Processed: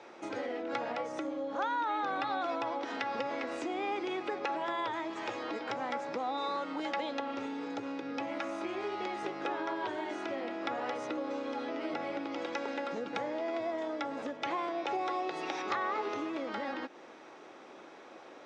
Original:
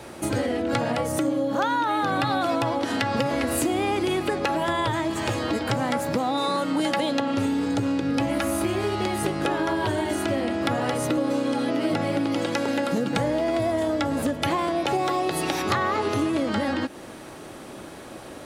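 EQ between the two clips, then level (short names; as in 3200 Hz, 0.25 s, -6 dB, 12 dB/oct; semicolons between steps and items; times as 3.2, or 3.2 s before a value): air absorption 83 m; speaker cabinet 480–6000 Hz, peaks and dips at 610 Hz -5 dB, 1700 Hz -4 dB, 3000 Hz -6 dB, 4400 Hz -8 dB; bell 1100 Hz -2.5 dB; -5.0 dB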